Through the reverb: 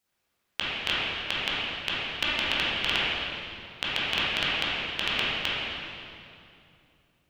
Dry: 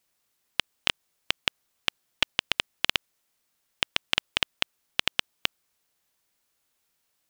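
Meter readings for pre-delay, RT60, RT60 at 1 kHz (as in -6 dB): 12 ms, 2.6 s, 2.5 s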